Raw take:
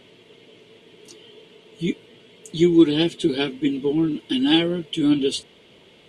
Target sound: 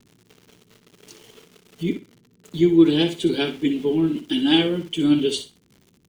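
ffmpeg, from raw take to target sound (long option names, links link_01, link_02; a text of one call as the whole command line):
ffmpeg -i in.wav -filter_complex "[0:a]asettb=1/sr,asplit=3[link_01][link_02][link_03];[link_01]atrim=end=1.834[link_04];[link_02]atrim=start=1.83:end=2.86,asetpts=PTS-STARTPTS,afade=type=in:duration=0.004:curve=qsin,afade=type=out:start_time=1.026:duration=0.004:curve=qsin,lowpass=frequency=2300:poles=1[link_05];[link_03]atrim=start=2.856[link_06];[link_04][link_05]acrossfade=duration=0.004:curve1=hsin:curve2=qsin[link_07];[link_07][link_06]acrossfade=duration=0.004:curve1=qsin:curve2=hsin,acrossover=split=280[link_08][link_09];[link_09]aeval=exprs='val(0)*gte(abs(val(0)),0.00596)':channel_layout=same[link_10];[link_08][link_10]amix=inputs=2:normalize=0,aecho=1:1:61|122|183:0.316|0.0632|0.0126" out.wav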